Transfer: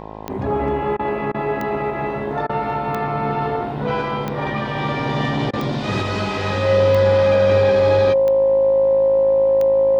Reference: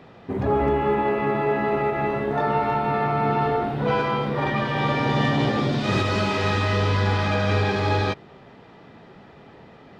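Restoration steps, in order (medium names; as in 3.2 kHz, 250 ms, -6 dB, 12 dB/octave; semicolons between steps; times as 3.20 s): de-click; de-hum 53.2 Hz, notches 20; band-stop 540 Hz, Q 30; interpolate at 0.97/1.32/2.47/5.51 s, 22 ms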